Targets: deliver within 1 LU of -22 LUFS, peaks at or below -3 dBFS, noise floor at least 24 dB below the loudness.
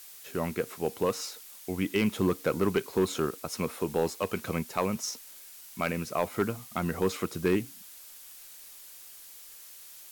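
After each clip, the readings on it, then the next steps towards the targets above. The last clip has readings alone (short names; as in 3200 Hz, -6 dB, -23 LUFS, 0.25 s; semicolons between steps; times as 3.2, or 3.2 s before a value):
clipped 0.3%; flat tops at -17.5 dBFS; noise floor -49 dBFS; noise floor target -55 dBFS; loudness -31.0 LUFS; peak -17.5 dBFS; loudness target -22.0 LUFS
-> clip repair -17.5 dBFS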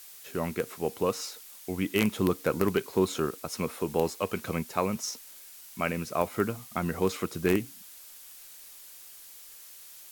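clipped 0.0%; noise floor -49 dBFS; noise floor target -55 dBFS
-> denoiser 6 dB, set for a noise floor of -49 dBFS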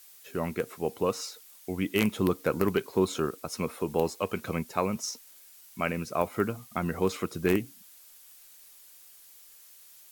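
noise floor -54 dBFS; noise floor target -55 dBFS
-> denoiser 6 dB, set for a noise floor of -54 dBFS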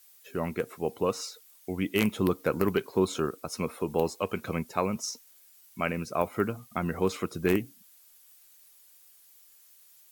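noise floor -58 dBFS; loudness -30.5 LUFS; peak -8.5 dBFS; loudness target -22.0 LUFS
-> gain +8.5 dB; limiter -3 dBFS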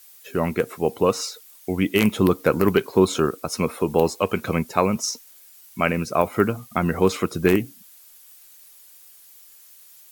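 loudness -22.5 LUFS; peak -3.0 dBFS; noise floor -49 dBFS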